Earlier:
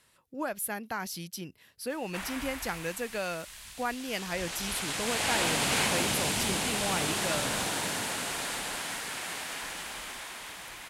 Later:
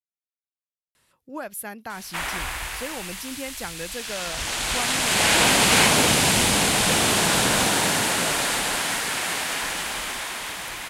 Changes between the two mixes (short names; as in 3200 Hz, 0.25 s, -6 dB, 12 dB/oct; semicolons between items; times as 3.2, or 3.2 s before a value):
speech: entry +0.95 s; background +10.5 dB